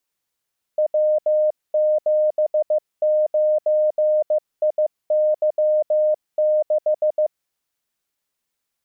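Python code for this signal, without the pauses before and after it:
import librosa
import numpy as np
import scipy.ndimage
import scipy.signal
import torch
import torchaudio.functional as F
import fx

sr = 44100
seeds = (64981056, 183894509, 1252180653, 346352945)

y = fx.morse(sr, text='W79IY6', wpm=15, hz=612.0, level_db=-14.5)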